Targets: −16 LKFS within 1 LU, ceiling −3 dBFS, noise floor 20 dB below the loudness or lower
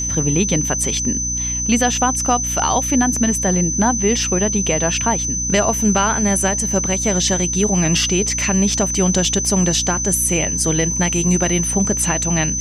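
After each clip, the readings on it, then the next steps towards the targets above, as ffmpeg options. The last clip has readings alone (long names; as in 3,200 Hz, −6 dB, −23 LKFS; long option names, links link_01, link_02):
mains hum 60 Hz; hum harmonics up to 300 Hz; level of the hum −25 dBFS; interfering tone 6,100 Hz; level of the tone −20 dBFS; integrated loudness −16.5 LKFS; sample peak −4.0 dBFS; target loudness −16.0 LKFS
→ -af "bandreject=frequency=60:width_type=h:width=4,bandreject=frequency=120:width_type=h:width=4,bandreject=frequency=180:width_type=h:width=4,bandreject=frequency=240:width_type=h:width=4,bandreject=frequency=300:width_type=h:width=4"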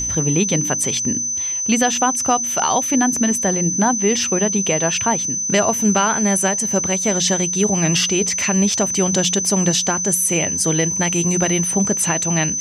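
mains hum none found; interfering tone 6,100 Hz; level of the tone −20 dBFS
→ -af "bandreject=frequency=6100:width=30"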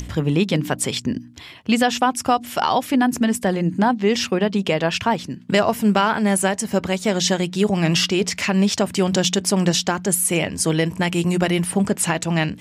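interfering tone none found; integrated loudness −20.0 LKFS; sample peak −4.5 dBFS; target loudness −16.0 LKFS
→ -af "volume=4dB,alimiter=limit=-3dB:level=0:latency=1"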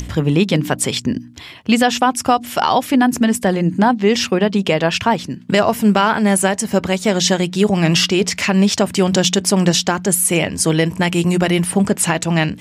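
integrated loudness −16.0 LKFS; sample peak −3.0 dBFS; background noise floor −37 dBFS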